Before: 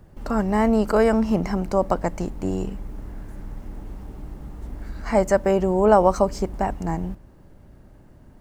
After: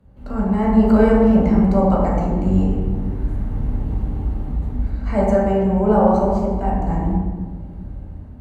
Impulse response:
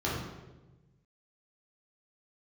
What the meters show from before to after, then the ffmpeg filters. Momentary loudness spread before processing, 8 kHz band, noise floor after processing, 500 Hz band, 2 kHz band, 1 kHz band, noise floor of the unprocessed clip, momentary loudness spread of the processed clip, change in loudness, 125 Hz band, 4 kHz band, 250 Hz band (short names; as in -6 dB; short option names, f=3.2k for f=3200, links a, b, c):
21 LU, under -10 dB, -35 dBFS, +1.5 dB, -1.5 dB, +1.5 dB, -50 dBFS, 16 LU, +3.0 dB, +9.5 dB, n/a, +7.5 dB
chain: -filter_complex "[0:a]dynaudnorm=f=300:g=5:m=10dB[a];[1:a]atrim=start_sample=2205,asetrate=29106,aresample=44100[b];[a][b]afir=irnorm=-1:irlink=0,volume=-14.5dB"